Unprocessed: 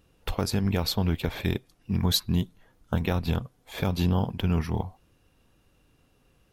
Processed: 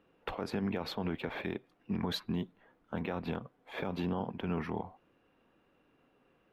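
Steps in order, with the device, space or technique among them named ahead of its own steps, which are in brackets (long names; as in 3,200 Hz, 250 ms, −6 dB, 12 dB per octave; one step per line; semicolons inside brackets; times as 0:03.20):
DJ mixer with the lows and highs turned down (three-way crossover with the lows and the highs turned down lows −19 dB, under 190 Hz, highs −22 dB, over 2,800 Hz; brickwall limiter −24.5 dBFS, peak gain reduction 10.5 dB)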